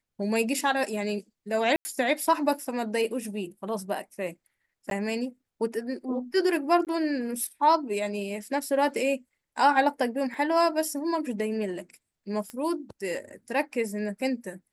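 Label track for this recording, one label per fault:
1.760000	1.850000	dropout 90 ms
4.900000	4.910000	dropout 12 ms
6.850000	6.870000	dropout 18 ms
10.340000	10.340000	dropout 3.4 ms
12.500000	12.500000	pop -23 dBFS

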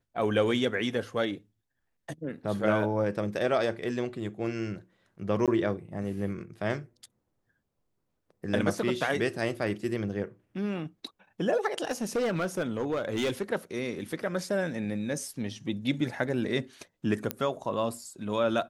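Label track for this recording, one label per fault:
5.460000	5.480000	dropout 17 ms
11.840000	13.430000	clipped -24 dBFS
17.310000	17.310000	pop -12 dBFS

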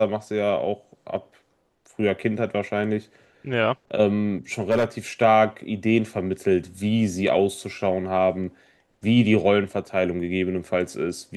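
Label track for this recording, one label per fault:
4.700000	4.840000	clipped -15.5 dBFS

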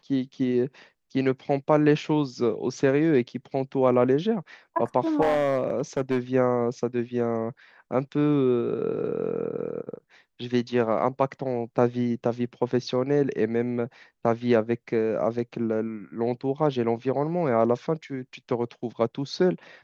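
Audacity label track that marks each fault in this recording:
5.210000	6.180000	clipped -18 dBFS

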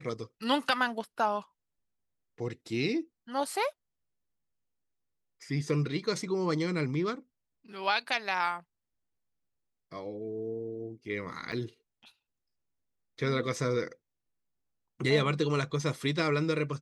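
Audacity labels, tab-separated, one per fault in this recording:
11.520000	11.530000	dropout 6.5 ms

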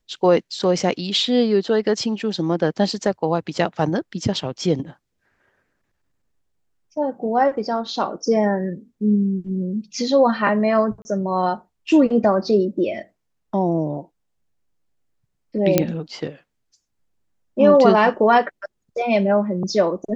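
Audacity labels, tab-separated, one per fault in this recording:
11.020000	11.050000	dropout 30 ms
15.780000	15.780000	pop -1 dBFS

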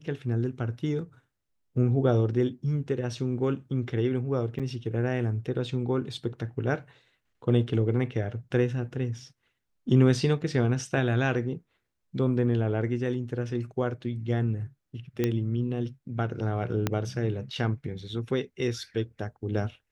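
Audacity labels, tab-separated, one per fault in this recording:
4.590000	4.600000	dropout 6.9 ms
15.240000	15.240000	pop -13 dBFS
16.870000	16.870000	pop -11 dBFS

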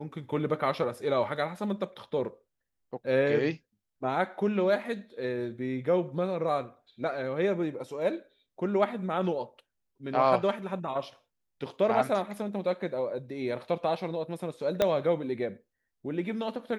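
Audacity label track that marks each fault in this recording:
14.820000	14.820000	pop -11 dBFS

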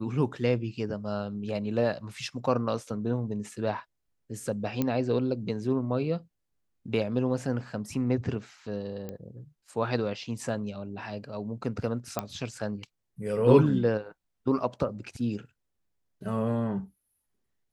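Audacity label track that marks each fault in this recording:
4.820000	4.820000	pop -14 dBFS
9.090000	9.090000	pop -24 dBFS
12.190000	12.190000	pop -14 dBFS

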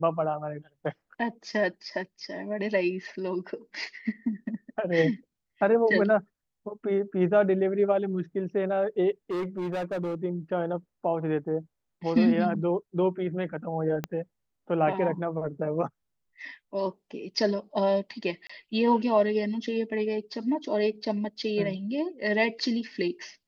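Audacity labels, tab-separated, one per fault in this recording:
9.310000	10.150000	clipped -27 dBFS
14.040000	14.040000	pop -16 dBFS
18.470000	18.500000	dropout 25 ms

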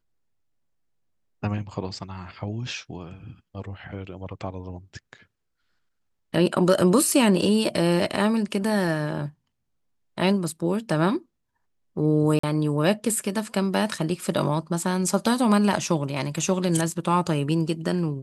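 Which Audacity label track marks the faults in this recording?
12.390000	12.430000	dropout 44 ms

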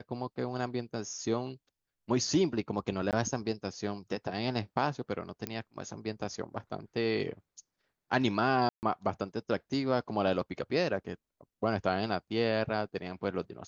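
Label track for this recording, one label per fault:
3.110000	3.130000	dropout 18 ms
5.470000	5.470000	pop -19 dBFS
8.690000	8.830000	dropout 139 ms

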